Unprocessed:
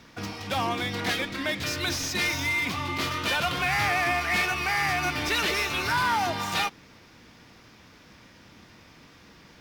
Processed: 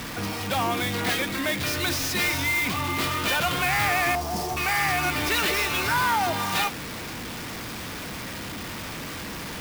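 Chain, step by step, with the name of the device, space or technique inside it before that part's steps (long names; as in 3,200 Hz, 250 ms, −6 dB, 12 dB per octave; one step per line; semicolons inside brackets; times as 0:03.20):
0:04.15–0:04.57: elliptic band-stop filter 950–5,100 Hz
early CD player with a faulty converter (converter with a step at zero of −29.5 dBFS; converter with an unsteady clock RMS 0.024 ms)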